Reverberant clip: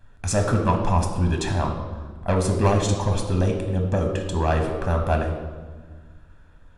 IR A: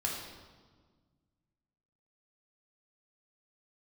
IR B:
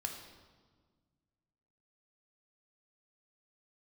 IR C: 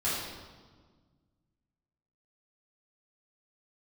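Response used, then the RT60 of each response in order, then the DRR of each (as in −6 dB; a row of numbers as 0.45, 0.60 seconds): B; 1.5, 1.6, 1.5 seconds; −2.5, 2.5, −10.0 decibels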